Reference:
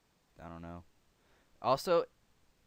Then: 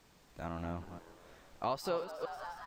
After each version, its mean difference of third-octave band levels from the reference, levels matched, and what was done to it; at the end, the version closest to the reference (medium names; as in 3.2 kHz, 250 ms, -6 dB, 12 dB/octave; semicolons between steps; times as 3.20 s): 7.0 dB: chunks repeated in reverse 141 ms, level -10 dB; on a send: frequency-shifting echo 180 ms, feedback 65%, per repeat +120 Hz, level -19 dB; on the sum: compression 4:1, threshold -43 dBFS, peak gain reduction 16 dB; trim +8.5 dB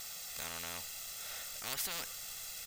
17.0 dB: pre-emphasis filter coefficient 0.97; comb 1.5 ms, depth 92%; spectrum-flattening compressor 10:1; trim +8 dB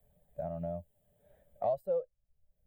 9.5 dB: expander on every frequency bin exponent 1.5; FFT filter 120 Hz 0 dB, 200 Hz -4 dB, 310 Hz -21 dB, 600 Hz +12 dB, 970 Hz -16 dB, 2.2 kHz -24 dB, 3.3 kHz -17 dB, 5.7 kHz -28 dB, 10 kHz 0 dB; three bands compressed up and down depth 100%; trim -2.5 dB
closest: first